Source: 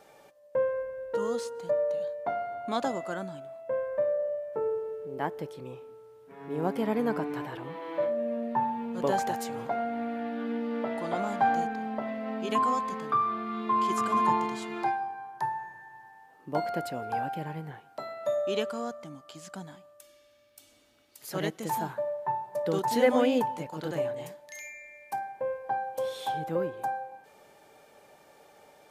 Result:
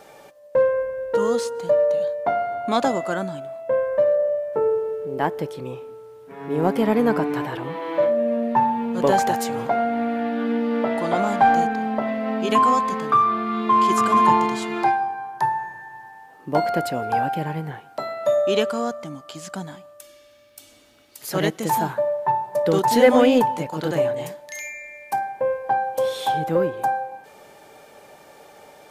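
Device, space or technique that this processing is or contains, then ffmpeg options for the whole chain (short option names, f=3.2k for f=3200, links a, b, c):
parallel distortion: -filter_complex "[0:a]asplit=2[a][b];[b]asoftclip=type=hard:threshold=-24dB,volume=-11.5dB[c];[a][c]amix=inputs=2:normalize=0,volume=7.5dB"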